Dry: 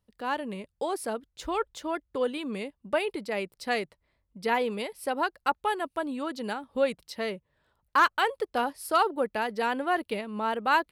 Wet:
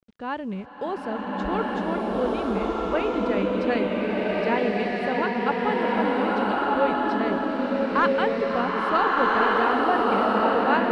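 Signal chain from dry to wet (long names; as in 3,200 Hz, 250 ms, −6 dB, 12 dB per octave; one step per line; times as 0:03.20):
bass and treble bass +10 dB, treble −7 dB
bit-depth reduction 10 bits, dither none
high-frequency loss of the air 110 metres
slow-attack reverb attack 1,430 ms, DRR −5.5 dB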